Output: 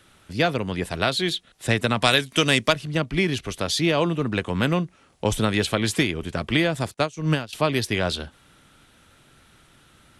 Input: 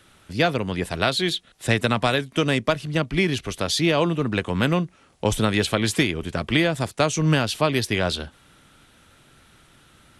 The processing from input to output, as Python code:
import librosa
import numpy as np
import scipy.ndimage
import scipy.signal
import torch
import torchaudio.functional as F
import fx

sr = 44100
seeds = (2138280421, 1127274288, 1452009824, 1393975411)

y = fx.high_shelf(x, sr, hz=2000.0, db=11.0, at=(2.01, 2.72), fade=0.02)
y = fx.upward_expand(y, sr, threshold_db=-29.0, expansion=2.5, at=(6.94, 7.53))
y = y * 10.0 ** (-1.0 / 20.0)